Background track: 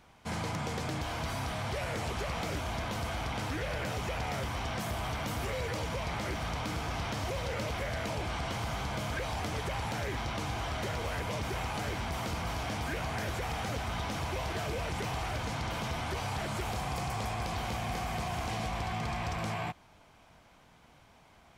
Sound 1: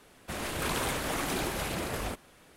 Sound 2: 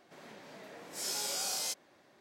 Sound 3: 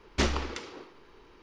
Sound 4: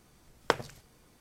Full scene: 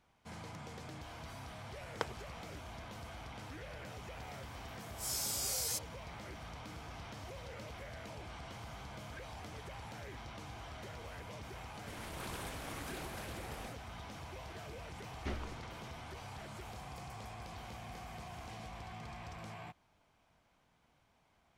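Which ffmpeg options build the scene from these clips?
-filter_complex "[0:a]volume=0.224[s0];[2:a]aemphasis=mode=production:type=50kf[s1];[3:a]bass=f=250:g=4,treble=f=4000:g=-13[s2];[4:a]atrim=end=1.2,asetpts=PTS-STARTPTS,volume=0.266,afade=t=in:d=0.004:c=hsin,afade=t=out:st=1.196:d=0.004:c=hsin,adelay=1510[s3];[s1]atrim=end=2.2,asetpts=PTS-STARTPTS,volume=0.355,afade=t=in:d=0.004:c=hsin,afade=t=out:st=2.196:d=0.004:c=hsin,adelay=178605S[s4];[1:a]atrim=end=2.56,asetpts=PTS-STARTPTS,volume=0.2,afade=t=in:d=0.004:c=hsin,afade=t=out:st=2.556:d=0.004:c=hsin,adelay=11580[s5];[s2]atrim=end=1.42,asetpts=PTS-STARTPTS,volume=0.168,afade=t=in:d=0.004:c=hsin,afade=t=out:st=1.416:d=0.004:c=hsin,adelay=15070[s6];[s0][s3][s4][s5][s6]amix=inputs=5:normalize=0"

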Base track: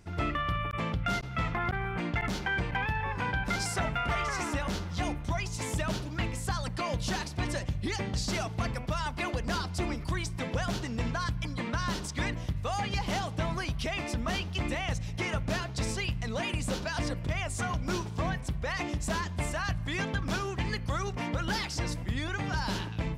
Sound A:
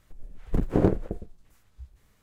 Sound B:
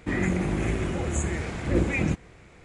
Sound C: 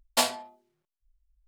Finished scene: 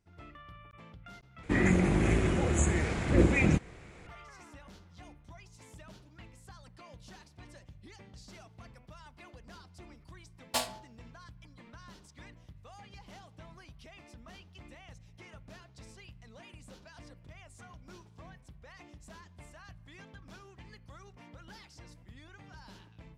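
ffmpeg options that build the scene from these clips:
-filter_complex "[0:a]volume=0.1,asplit=2[s0][s1];[s0]atrim=end=1.434[s2];[2:a]atrim=end=2.64[s3];[s1]atrim=start=4.066[s4];[3:a]atrim=end=1.47,asetpts=PTS-STARTPTS,volume=0.398,afade=t=in:d=0.004:c=hsin,afade=t=out:st=1.466:d=0.004:c=hsin,adelay=10370[s5];[s2][s3]acrossfade=d=0.004:c1=hsin:c2=hsin[s6];[s6][s4]acrossfade=d=0.004:c1=hsin:c2=hsin[s7];[s7][s5]amix=inputs=2:normalize=0"

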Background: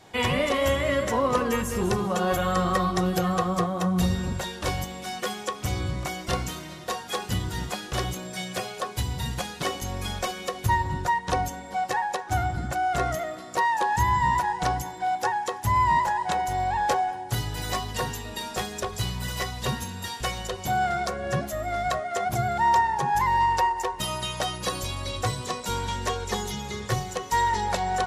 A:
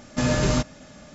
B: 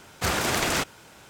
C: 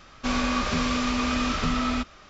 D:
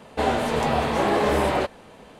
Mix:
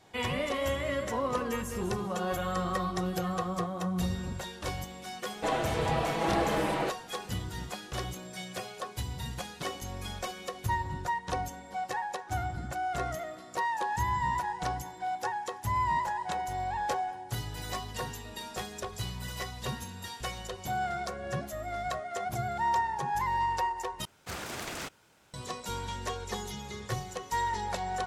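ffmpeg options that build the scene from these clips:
-filter_complex "[0:a]volume=0.422[s0];[4:a]aecho=1:1:6.1:0.71[s1];[s0]asplit=2[s2][s3];[s2]atrim=end=24.054[s4];[2:a]atrim=end=1.29,asetpts=PTS-STARTPTS,volume=0.211[s5];[s3]atrim=start=25.336[s6];[s1]atrim=end=2.19,asetpts=PTS-STARTPTS,volume=0.355,afade=t=in:d=0.004:c=hsin,afade=t=out:st=2.186:d=0.004:c=hsin,adelay=231525S[s7];[s4][s5]acrossfade=d=0.004:c1=hsin:c2=hsin[s8];[s8][s6]acrossfade=d=0.004:c1=hsin:c2=hsin[s9];[s9][s7]amix=inputs=2:normalize=0"

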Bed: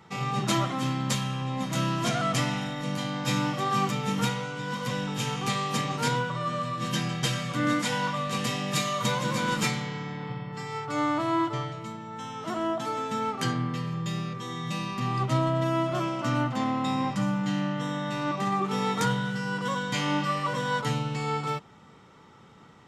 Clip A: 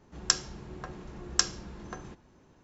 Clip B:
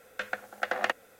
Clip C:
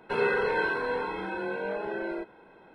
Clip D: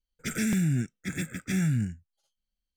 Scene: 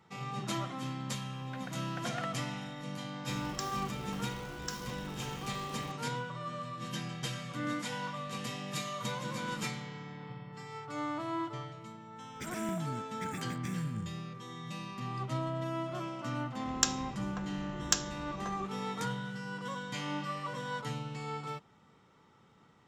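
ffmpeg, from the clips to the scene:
-filter_complex "[1:a]asplit=2[s0][s1];[0:a]volume=0.316[s2];[s0]aeval=exprs='val(0)+0.5*0.0531*sgn(val(0))':c=same[s3];[4:a]alimiter=level_in=1.58:limit=0.0631:level=0:latency=1:release=207,volume=0.631[s4];[s1]aexciter=amount=1.5:drive=5.2:freq=2800[s5];[2:a]atrim=end=1.19,asetpts=PTS-STARTPTS,volume=0.178,afade=t=in:d=0.004:c=hsin,afade=t=out:st=1.186:d=0.004:c=hsin,adelay=1340[s6];[s3]atrim=end=2.63,asetpts=PTS-STARTPTS,volume=0.133,afade=t=in:d=0.004:c=hsin,afade=t=out:st=2.626:d=0.004:c=hsin,adelay=145089S[s7];[s4]atrim=end=2.76,asetpts=PTS-STARTPTS,volume=0.668,afade=t=in:d=0.004:c=hsin,afade=t=out:st=2.756:d=0.004:c=hsin,adelay=12160[s8];[s5]atrim=end=2.63,asetpts=PTS-STARTPTS,volume=0.668,afade=t=in:d=0.004:c=hsin,afade=t=out:st=2.626:d=0.004:c=hsin,adelay=16530[s9];[s2][s6][s7][s8][s9]amix=inputs=5:normalize=0"

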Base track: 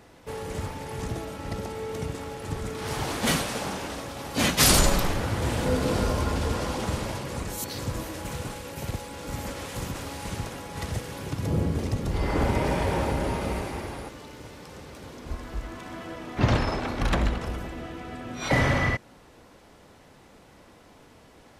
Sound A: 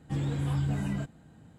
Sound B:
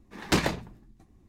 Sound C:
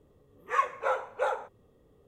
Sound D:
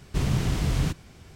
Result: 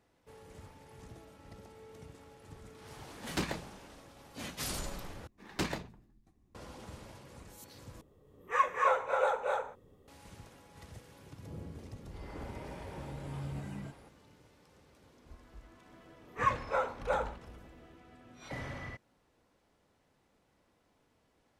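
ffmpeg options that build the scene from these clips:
-filter_complex "[2:a]asplit=2[s0][s1];[3:a]asplit=2[s2][s3];[0:a]volume=0.106[s4];[s2]aecho=1:1:227.4|259.5:0.447|0.708[s5];[1:a]dynaudnorm=f=250:g=3:m=2.11[s6];[s4]asplit=3[s7][s8][s9];[s7]atrim=end=5.274[s10];[s1]atrim=end=1.28,asetpts=PTS-STARTPTS,volume=0.299[s11];[s8]atrim=start=6.546:end=8.014[s12];[s5]atrim=end=2.07,asetpts=PTS-STARTPTS,volume=0.841[s13];[s9]atrim=start=10.076[s14];[s0]atrim=end=1.28,asetpts=PTS-STARTPTS,volume=0.299,afade=t=in:d=0.004:c=hsin,afade=t=out:st=1.276:d=0.004:c=hsin,adelay=134505S[s15];[s6]atrim=end=1.58,asetpts=PTS-STARTPTS,volume=0.126,afade=t=in:d=0.004:c=hsin,afade=t=out:st=1.576:d=0.004:c=hsin,adelay=12860[s16];[s3]atrim=end=2.07,asetpts=PTS-STARTPTS,volume=0.708,afade=t=in:d=0.004:c=hsin,afade=t=out:st=2.066:d=0.004:c=hsin,adelay=700308S[s17];[s10][s11]acrossfade=d=0.004:c1=hsin:c2=hsin[s18];[s18][s12]acrossfade=d=0.004:c1=hsin:c2=hsin[s19];[s19][s13]acrossfade=d=0.004:c1=hsin:c2=hsin[s20];[s20][s14]acrossfade=d=0.004:c1=hsin:c2=hsin[s21];[s21][s15][s16][s17]amix=inputs=4:normalize=0"

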